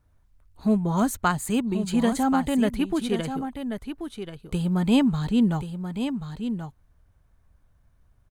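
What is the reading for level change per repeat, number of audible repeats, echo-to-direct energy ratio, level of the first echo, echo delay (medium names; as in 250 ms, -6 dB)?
no regular repeats, 1, -8.5 dB, -8.5 dB, 1083 ms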